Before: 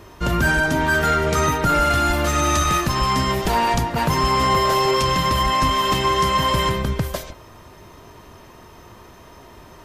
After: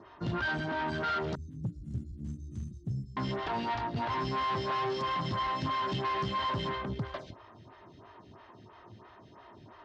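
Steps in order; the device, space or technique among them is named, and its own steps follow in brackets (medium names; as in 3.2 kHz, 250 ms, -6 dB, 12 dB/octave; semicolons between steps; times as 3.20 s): 1.35–3.17 s: inverse Chebyshev band-stop 690–2700 Hz, stop band 70 dB; vibe pedal into a guitar amplifier (lamp-driven phase shifter 3 Hz; valve stage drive 24 dB, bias 0.4; cabinet simulation 92–4300 Hz, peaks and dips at 110 Hz +7 dB, 490 Hz -7 dB, 2.4 kHz -5 dB); trim -4 dB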